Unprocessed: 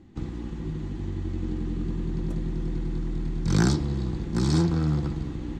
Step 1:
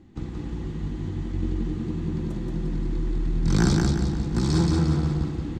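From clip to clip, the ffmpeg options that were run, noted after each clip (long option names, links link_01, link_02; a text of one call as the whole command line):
ffmpeg -i in.wav -af "aecho=1:1:177|354|531|708|885:0.708|0.297|0.125|0.0525|0.022" out.wav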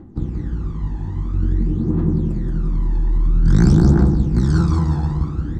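ffmpeg -i in.wav -af "highshelf=frequency=1800:width_type=q:width=1.5:gain=-7.5,areverse,acompressor=mode=upward:threshold=-34dB:ratio=2.5,areverse,aphaser=in_gain=1:out_gain=1:delay=1.2:decay=0.66:speed=0.5:type=triangular,volume=1.5dB" out.wav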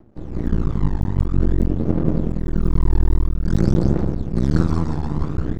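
ffmpeg -i in.wav -af "aeval=exprs='max(val(0),0)':channel_layout=same,dynaudnorm=framelen=240:gausssize=3:maxgain=14.5dB,aeval=exprs='0.944*(cos(1*acos(clip(val(0)/0.944,-1,1)))-cos(1*PI/2))+0.376*(cos(2*acos(clip(val(0)/0.944,-1,1)))-cos(2*PI/2))':channel_layout=same,volume=-6dB" out.wav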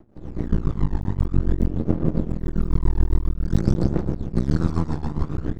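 ffmpeg -i in.wav -af "tremolo=f=7.3:d=0.72" out.wav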